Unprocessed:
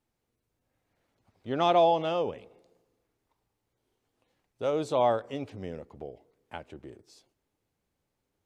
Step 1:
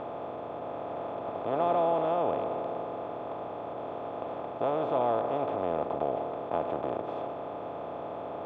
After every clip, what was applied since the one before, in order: spectral levelling over time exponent 0.2; low-pass 1.6 kHz 12 dB/octave; trim -8 dB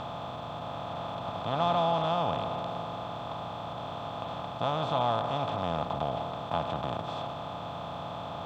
FFT filter 170 Hz 0 dB, 390 Hz -20 dB, 830 Hz -7 dB, 1.2 kHz -4 dB, 2.2 kHz -7 dB, 3.8 kHz +9 dB; trim +9 dB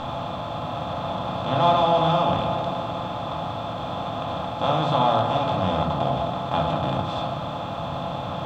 simulated room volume 500 m³, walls furnished, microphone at 2.2 m; trim +4.5 dB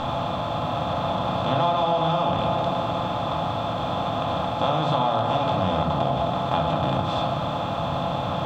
compression 6:1, threshold -22 dBFS, peak gain reduction 8 dB; trim +3.5 dB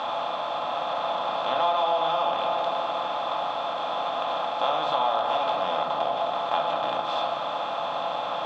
band-pass 570–5800 Hz

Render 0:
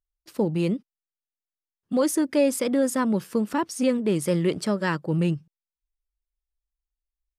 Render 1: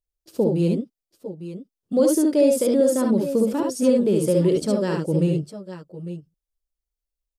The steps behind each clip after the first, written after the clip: ten-band graphic EQ 500 Hz +6 dB, 1 kHz -6 dB, 2 kHz -10 dB; on a send: multi-tap echo 58/71/851/862 ms -6.5/-4/-16.5/-14 dB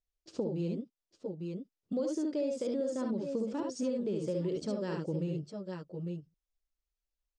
steep low-pass 7.2 kHz 36 dB/octave; compression 3:1, threshold -31 dBFS, peak gain reduction 13.5 dB; trim -3.5 dB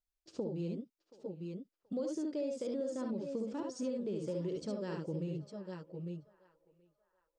band-passed feedback delay 728 ms, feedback 41%, band-pass 1.2 kHz, level -17 dB; trim -4 dB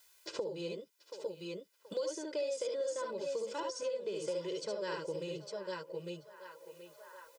high-pass 1.4 kHz 6 dB/octave; comb 2 ms, depth 95%; three bands compressed up and down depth 70%; trim +7.5 dB

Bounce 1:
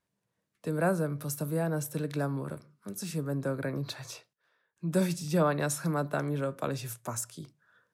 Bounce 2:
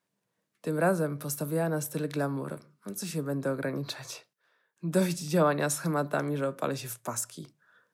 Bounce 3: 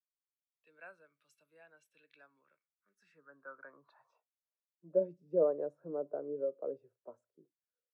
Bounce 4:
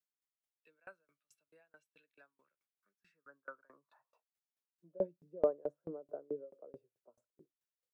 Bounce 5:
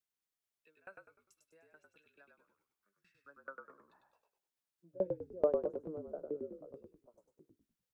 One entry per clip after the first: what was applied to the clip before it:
high-pass 160 Hz 12 dB/octave; trim +2.5 dB
band-pass sweep 2.7 kHz -> 470 Hz, 2.34–5.19 s; spectral contrast expander 1.5:1
sawtooth tremolo in dB decaying 4.6 Hz, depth 31 dB; trim +4 dB
frequency-shifting echo 100 ms, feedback 36%, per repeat -47 Hz, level -4 dB

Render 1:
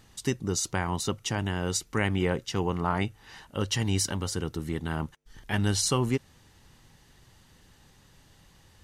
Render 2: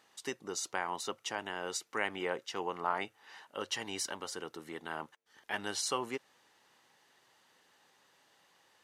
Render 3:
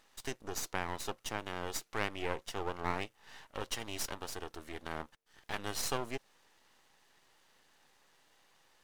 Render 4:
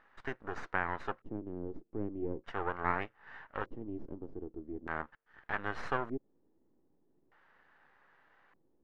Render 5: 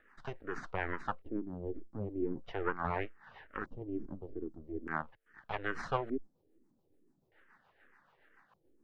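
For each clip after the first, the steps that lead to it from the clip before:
high-pass 520 Hz 12 dB/octave; treble shelf 3.6 kHz -7.5 dB; trim -2.5 dB
dynamic bell 1.6 kHz, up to -4 dB, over -47 dBFS, Q 0.73; half-wave rectifier; trim +3.5 dB
LFO low-pass square 0.41 Hz 320–1600 Hz
rotary cabinet horn 7 Hz; barber-pole phaser -2.3 Hz; trim +5.5 dB

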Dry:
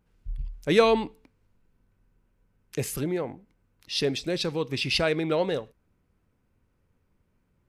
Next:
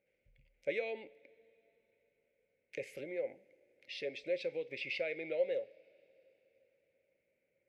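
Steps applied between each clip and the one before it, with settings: compression 3:1, threshold -34 dBFS, peak gain reduction 15 dB; two resonant band-passes 1.1 kHz, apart 2 oct; on a send at -14.5 dB: reverberation, pre-delay 3 ms; on the sum: trim +5.5 dB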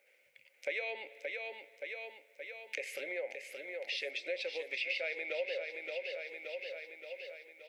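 high-pass 840 Hz 12 dB/octave; feedback delay 573 ms, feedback 53%, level -9 dB; compression 2.5:1, threshold -55 dBFS, peak gain reduction 13 dB; trim +15.5 dB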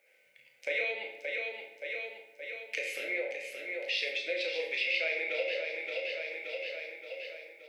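dynamic bell 2.8 kHz, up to +4 dB, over -50 dBFS, Q 0.76; on a send: flutter echo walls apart 6.3 m, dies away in 0.28 s; on the sum: simulated room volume 160 m³, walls mixed, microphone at 0.69 m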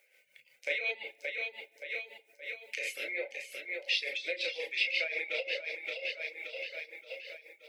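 treble shelf 2 kHz +8.5 dB; tremolo 5.6 Hz, depth 53%; reverb removal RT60 0.6 s; trim -2 dB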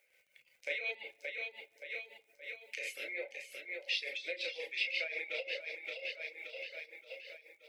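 crackle 43 per s -55 dBFS; trim -4.5 dB

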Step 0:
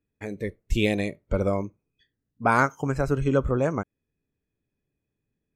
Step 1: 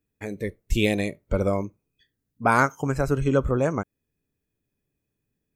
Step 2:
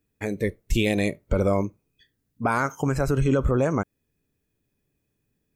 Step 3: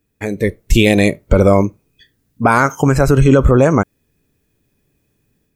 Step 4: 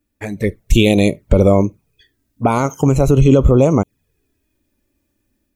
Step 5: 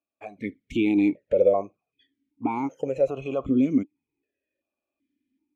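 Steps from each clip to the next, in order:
treble shelf 8.7 kHz +8.5 dB; trim +1 dB
peak limiter -17 dBFS, peak gain reduction 11 dB; trim +4.5 dB
level rider gain up to 5 dB; trim +6.5 dB
touch-sensitive flanger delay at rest 3.4 ms, full sweep at -10.5 dBFS
stepped vowel filter 2.6 Hz

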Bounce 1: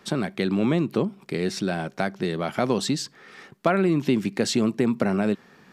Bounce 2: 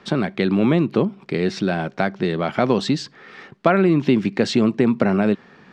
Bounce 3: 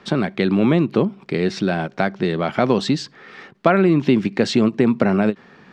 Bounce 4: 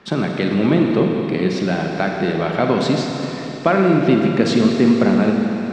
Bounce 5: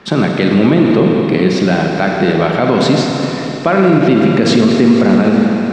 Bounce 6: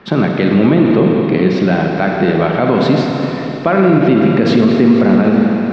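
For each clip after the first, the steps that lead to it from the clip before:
low-pass 4.1 kHz 12 dB/octave; trim +5 dB
endings held to a fixed fall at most 460 dB/s; trim +1 dB
reverberation RT60 3.6 s, pre-delay 38 ms, DRR 1 dB; trim -1 dB
peak limiter -8.5 dBFS, peak gain reduction 6.5 dB; trim +7.5 dB
distance through air 190 m

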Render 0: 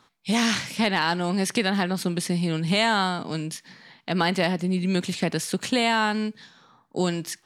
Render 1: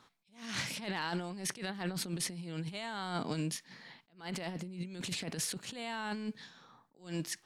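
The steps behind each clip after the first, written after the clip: peak limiter -14.5 dBFS, peak gain reduction 4.5 dB; compressor with a negative ratio -29 dBFS, ratio -0.5; attacks held to a fixed rise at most 170 dB/s; trim -8 dB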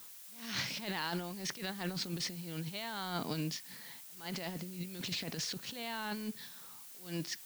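four-pole ladder low-pass 6.4 kHz, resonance 35%; added noise blue -58 dBFS; trim +6 dB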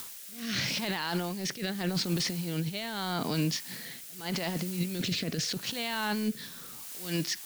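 in parallel at +2 dB: upward compressor, threshold -40 dBFS; on the sum: rotary cabinet horn 0.8 Hz; peak limiter -24.5 dBFS, peak gain reduction 8 dB; trim +4 dB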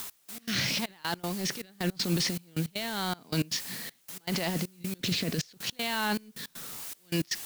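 word length cut 8-bit, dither triangular; trance gate "x..x.xxx" 158 bpm -24 dB; trim +2 dB

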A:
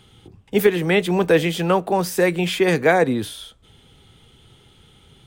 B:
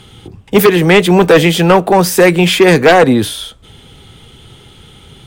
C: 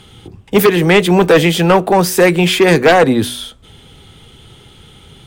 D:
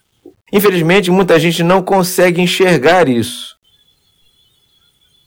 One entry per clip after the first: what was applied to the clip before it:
sine folder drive 6 dB, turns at -4 dBFS; trim +2.5 dB
de-hum 122.4 Hz, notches 3; trim -2 dB
spectral noise reduction 22 dB; bit crusher 10-bit

